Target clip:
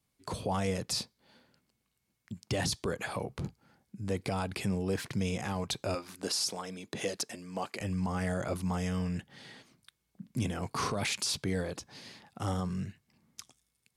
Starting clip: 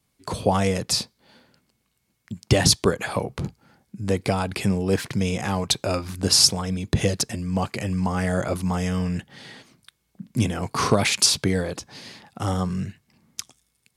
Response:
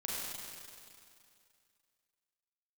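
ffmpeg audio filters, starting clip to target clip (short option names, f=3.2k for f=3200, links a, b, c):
-filter_complex "[0:a]asettb=1/sr,asplit=3[a][b][c];[a]atrim=end=5.954[d];[b]atrim=start=5.95:end=7.81,asetpts=PTS-STARTPTS,afade=t=in:d=0.004:c=qsin,afade=t=out:st=1.856:d=0.004:c=qsin,highpass=310[e];[c]atrim=start=7.806[f];[d][e]acrossfade=d=0.004:c1=hsin:c2=qsin[g];[g][f]acrossfade=d=0.004:c1=qsin:c2=hsin,alimiter=limit=-14.5dB:level=0:latency=1:release=21,volume=-8dB"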